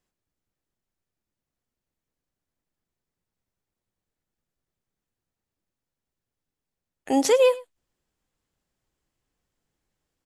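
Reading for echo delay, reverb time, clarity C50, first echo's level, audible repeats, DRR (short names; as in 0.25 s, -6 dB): 0.104 s, none, none, -20.5 dB, 1, none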